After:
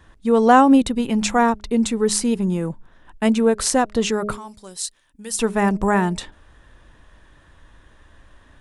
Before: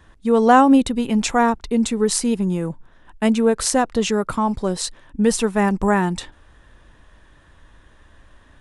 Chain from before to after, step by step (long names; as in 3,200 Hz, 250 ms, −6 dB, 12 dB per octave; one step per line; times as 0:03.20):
0:04.37–0:05.39: first-order pre-emphasis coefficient 0.9
hum removal 208.2 Hz, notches 3